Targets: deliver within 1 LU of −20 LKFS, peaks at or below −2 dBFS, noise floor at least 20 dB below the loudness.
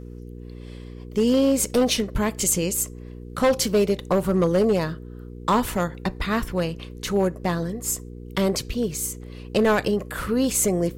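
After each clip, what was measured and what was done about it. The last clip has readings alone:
share of clipped samples 1.0%; peaks flattened at −13.5 dBFS; mains hum 60 Hz; hum harmonics up to 480 Hz; level of the hum −37 dBFS; integrated loudness −23.5 LKFS; sample peak −13.5 dBFS; target loudness −20.0 LKFS
→ clipped peaks rebuilt −13.5 dBFS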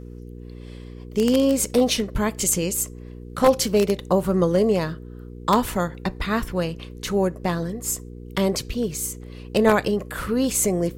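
share of clipped samples 0.0%; mains hum 60 Hz; hum harmonics up to 480 Hz; level of the hum −37 dBFS
→ hum removal 60 Hz, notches 8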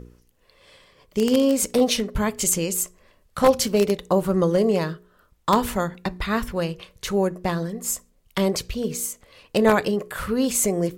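mains hum none found; integrated loudness −23.0 LKFS; sample peak −4.0 dBFS; target loudness −20.0 LKFS
→ level +3 dB
brickwall limiter −2 dBFS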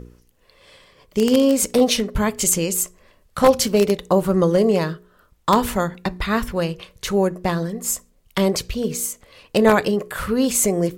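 integrated loudness −20.0 LKFS; sample peak −2.0 dBFS; background noise floor −59 dBFS

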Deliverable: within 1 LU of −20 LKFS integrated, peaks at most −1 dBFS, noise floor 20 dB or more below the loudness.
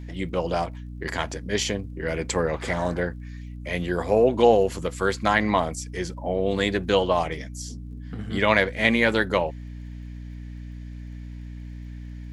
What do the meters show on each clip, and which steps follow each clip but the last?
crackle rate 28 per second; mains hum 60 Hz; hum harmonics up to 300 Hz; level of the hum −34 dBFS; integrated loudness −24.0 LKFS; sample peak −3.5 dBFS; target loudness −20.0 LKFS
→ click removal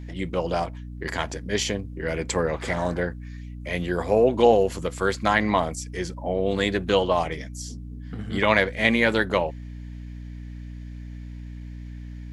crackle rate 0 per second; mains hum 60 Hz; hum harmonics up to 300 Hz; level of the hum −35 dBFS
→ hum removal 60 Hz, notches 5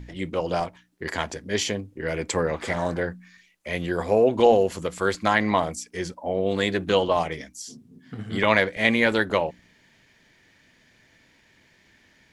mains hum none found; integrated loudness −24.0 LKFS; sample peak −3.5 dBFS; target loudness −20.0 LKFS
→ level +4 dB
brickwall limiter −1 dBFS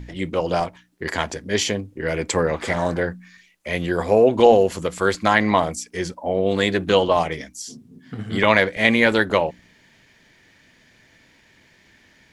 integrated loudness −20.5 LKFS; sample peak −1.0 dBFS; background noise floor −56 dBFS

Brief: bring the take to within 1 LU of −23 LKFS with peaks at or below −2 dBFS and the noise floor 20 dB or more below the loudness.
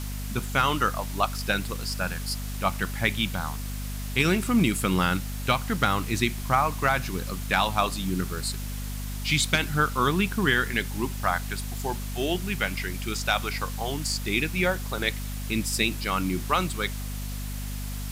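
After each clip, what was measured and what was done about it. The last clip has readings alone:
mains hum 50 Hz; hum harmonics up to 250 Hz; level of the hum −31 dBFS; background noise floor −33 dBFS; target noise floor −47 dBFS; integrated loudness −27.0 LKFS; sample peak −8.5 dBFS; target loudness −23.0 LKFS
→ mains-hum notches 50/100/150/200/250 Hz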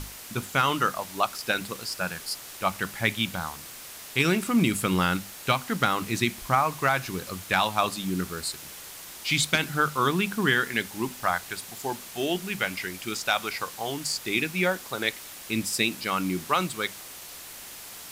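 mains hum none found; background noise floor −43 dBFS; target noise floor −47 dBFS
→ broadband denoise 6 dB, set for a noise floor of −43 dBFS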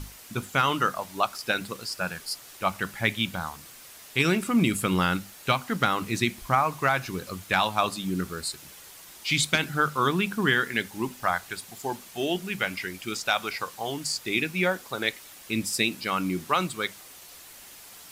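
background noise floor −48 dBFS; integrated loudness −27.0 LKFS; sample peak −9.0 dBFS; target loudness −23.0 LKFS
→ level +4 dB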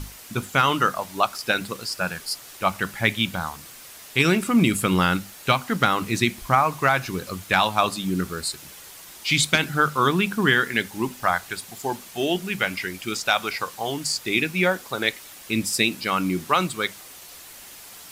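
integrated loudness −23.0 LKFS; sample peak −5.0 dBFS; background noise floor −44 dBFS

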